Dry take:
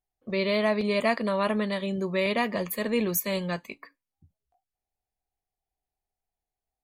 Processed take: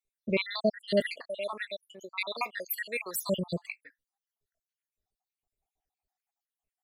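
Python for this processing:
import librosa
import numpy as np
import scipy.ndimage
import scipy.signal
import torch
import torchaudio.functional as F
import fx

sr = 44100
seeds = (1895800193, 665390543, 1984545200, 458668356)

y = fx.spec_dropout(x, sr, seeds[0], share_pct=73)
y = fx.highpass(y, sr, hz=890.0, slope=12, at=(1.06, 3.15), fade=0.02)
y = F.gain(torch.from_numpy(y), 3.0).numpy()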